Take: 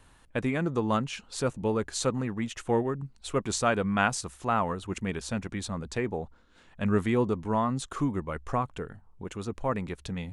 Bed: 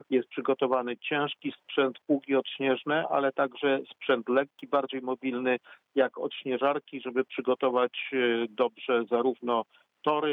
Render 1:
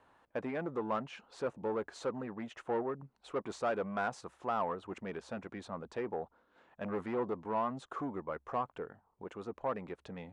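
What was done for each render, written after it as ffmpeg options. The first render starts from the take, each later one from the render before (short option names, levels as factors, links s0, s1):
-af "asoftclip=type=tanh:threshold=0.0562,bandpass=f=720:t=q:w=0.94:csg=0"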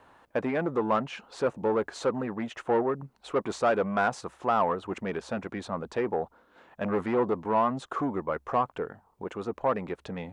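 -af "volume=2.82"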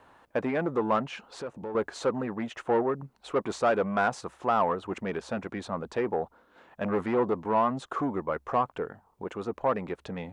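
-filter_complex "[0:a]asettb=1/sr,asplit=3[s0][s1][s2];[s0]atrim=end=1.294[s3];[s1]atrim=start=1.29:end=1.75,asetpts=PTS-STARTPTS,afade=t=in:d=0.004:c=qsin,afade=t=out:st=0.456:d=0.004:c=qsin,acompressor=threshold=0.01:ratio=2:attack=3.2:release=140:knee=1:detection=peak[s4];[s2]atrim=start=1.746[s5];[s3][s4]acrossfade=d=0.004:c1=hsin:c2=qsin[s6];[s6][s5]acrossfade=d=0.004:c1=qsin:c2=hsin"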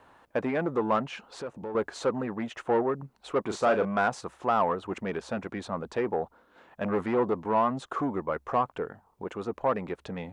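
-filter_complex "[0:a]asettb=1/sr,asplit=3[s0][s1][s2];[s0]atrim=end=3.424[s3];[s1]atrim=start=3.42:end=3.85,asetpts=PTS-STARTPTS,afade=t=in:d=0.004:c=qsin,afade=t=out:st=0.426:d=0.004:c=qsin,asplit=2[s4][s5];[s5]adelay=38,volume=0.398[s6];[s4][s6]amix=inputs=2:normalize=0,atrim=end_sample=18963[s7];[s2]atrim=start=3.846[s8];[s3][s7]acrossfade=d=0.004:c1=hsin:c2=qsin[s9];[s9][s8]acrossfade=d=0.004:c1=qsin:c2=hsin"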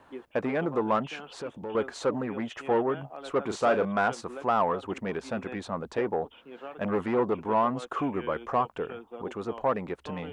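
-filter_complex "[1:a]volume=0.158[s0];[0:a][s0]amix=inputs=2:normalize=0"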